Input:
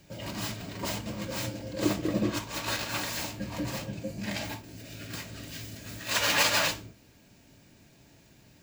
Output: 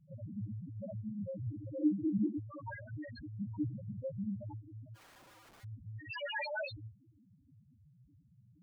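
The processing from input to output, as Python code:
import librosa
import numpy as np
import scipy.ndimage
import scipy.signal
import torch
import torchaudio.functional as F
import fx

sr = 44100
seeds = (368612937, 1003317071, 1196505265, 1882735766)

y = fx.spec_topn(x, sr, count=1)
y = fx.overflow_wrap(y, sr, gain_db=60.5, at=(4.94, 5.63), fade=0.02)
y = fx.end_taper(y, sr, db_per_s=310.0)
y = y * librosa.db_to_amplitude(5.0)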